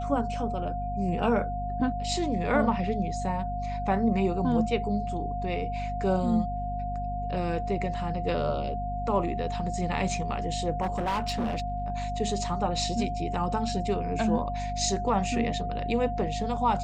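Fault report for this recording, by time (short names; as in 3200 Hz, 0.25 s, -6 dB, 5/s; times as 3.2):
hum 50 Hz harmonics 5 -34 dBFS
tone 710 Hz -32 dBFS
10.81–11.9 clipped -24.5 dBFS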